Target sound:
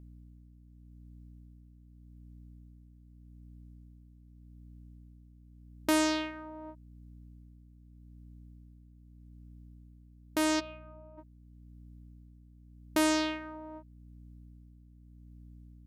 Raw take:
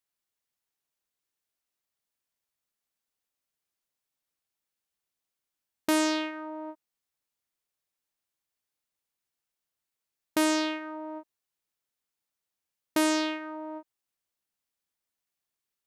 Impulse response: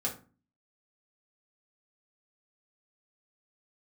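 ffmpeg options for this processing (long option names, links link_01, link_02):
-filter_complex "[0:a]asplit=3[link_01][link_02][link_03];[link_01]afade=type=out:start_time=10.59:duration=0.02[link_04];[link_02]asplit=3[link_05][link_06][link_07];[link_05]bandpass=frequency=730:width_type=q:width=8,volume=0dB[link_08];[link_06]bandpass=frequency=1090:width_type=q:width=8,volume=-6dB[link_09];[link_07]bandpass=frequency=2440:width_type=q:width=8,volume=-9dB[link_10];[link_08][link_09][link_10]amix=inputs=3:normalize=0,afade=type=in:start_time=10.59:duration=0.02,afade=type=out:start_time=11.17:duration=0.02[link_11];[link_03]afade=type=in:start_time=11.17:duration=0.02[link_12];[link_04][link_11][link_12]amix=inputs=3:normalize=0,aeval=exprs='val(0)+0.00398*(sin(2*PI*60*n/s)+sin(2*PI*2*60*n/s)/2+sin(2*PI*3*60*n/s)/3+sin(2*PI*4*60*n/s)/4+sin(2*PI*5*60*n/s)/5)':channel_layout=same,tremolo=f=0.84:d=0.47,volume=-1.5dB"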